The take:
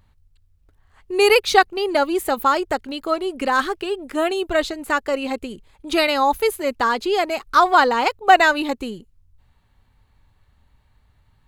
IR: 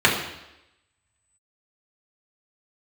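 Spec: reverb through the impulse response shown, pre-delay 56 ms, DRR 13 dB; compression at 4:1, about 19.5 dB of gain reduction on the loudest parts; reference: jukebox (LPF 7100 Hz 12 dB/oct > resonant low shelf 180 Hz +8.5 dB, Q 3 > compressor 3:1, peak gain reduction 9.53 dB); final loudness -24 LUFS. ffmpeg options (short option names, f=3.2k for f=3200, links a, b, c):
-filter_complex "[0:a]acompressor=threshold=-32dB:ratio=4,asplit=2[a][b];[1:a]atrim=start_sample=2205,adelay=56[c];[b][c]afir=irnorm=-1:irlink=0,volume=-34.5dB[d];[a][d]amix=inputs=2:normalize=0,lowpass=7.1k,lowshelf=f=180:t=q:w=3:g=8.5,acompressor=threshold=-38dB:ratio=3,volume=17dB"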